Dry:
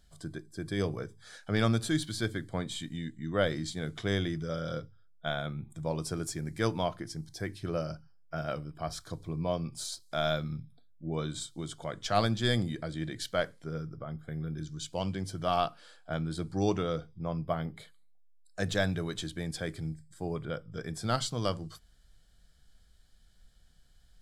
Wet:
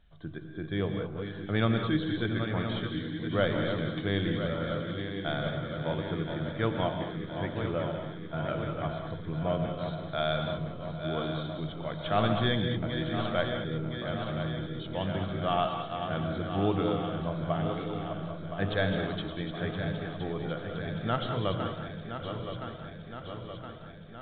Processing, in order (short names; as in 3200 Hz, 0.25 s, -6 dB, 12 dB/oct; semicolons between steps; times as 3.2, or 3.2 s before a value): regenerating reverse delay 0.509 s, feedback 79%, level -7.5 dB; non-linear reverb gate 0.23 s rising, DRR 5.5 dB; µ-law 64 kbps 8000 Hz